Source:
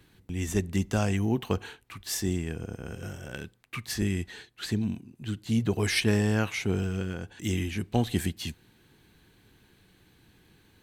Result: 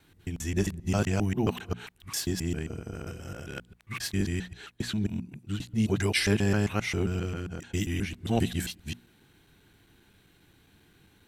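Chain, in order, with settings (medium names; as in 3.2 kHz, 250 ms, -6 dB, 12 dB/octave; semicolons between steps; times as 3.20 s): time reversed locally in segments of 128 ms; tape speed -4%; hum notches 60/120/180/240 Hz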